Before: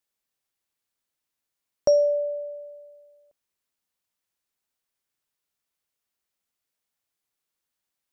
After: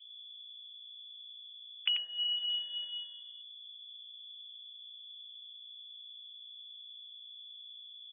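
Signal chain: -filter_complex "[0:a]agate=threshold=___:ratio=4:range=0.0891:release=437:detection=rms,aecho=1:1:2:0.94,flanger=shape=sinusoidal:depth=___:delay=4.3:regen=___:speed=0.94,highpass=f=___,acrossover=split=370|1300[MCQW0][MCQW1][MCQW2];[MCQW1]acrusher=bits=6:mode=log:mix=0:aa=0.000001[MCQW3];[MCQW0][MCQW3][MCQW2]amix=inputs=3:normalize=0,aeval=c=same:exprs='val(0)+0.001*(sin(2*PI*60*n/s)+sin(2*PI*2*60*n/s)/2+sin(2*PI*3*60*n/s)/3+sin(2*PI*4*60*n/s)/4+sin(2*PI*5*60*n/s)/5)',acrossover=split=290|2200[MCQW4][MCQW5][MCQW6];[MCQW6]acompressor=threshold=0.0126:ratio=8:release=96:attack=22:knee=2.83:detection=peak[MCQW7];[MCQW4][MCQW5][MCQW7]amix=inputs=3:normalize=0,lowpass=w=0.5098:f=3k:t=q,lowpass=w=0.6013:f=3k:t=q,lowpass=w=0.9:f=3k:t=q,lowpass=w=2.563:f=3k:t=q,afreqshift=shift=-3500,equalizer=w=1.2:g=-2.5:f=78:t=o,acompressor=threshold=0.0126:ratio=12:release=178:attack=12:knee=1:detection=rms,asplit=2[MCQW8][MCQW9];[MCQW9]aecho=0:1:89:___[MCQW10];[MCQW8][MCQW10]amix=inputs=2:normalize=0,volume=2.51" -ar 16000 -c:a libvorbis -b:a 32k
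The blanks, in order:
0.002, 3.3, -19, 57, 0.562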